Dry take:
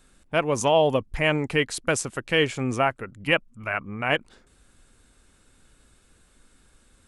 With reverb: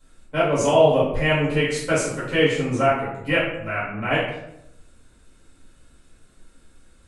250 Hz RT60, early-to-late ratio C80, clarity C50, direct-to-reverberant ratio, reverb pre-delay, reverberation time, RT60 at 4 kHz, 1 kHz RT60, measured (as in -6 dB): 0.95 s, 5.5 dB, 1.5 dB, -10.5 dB, 4 ms, 0.80 s, 0.50 s, 0.70 s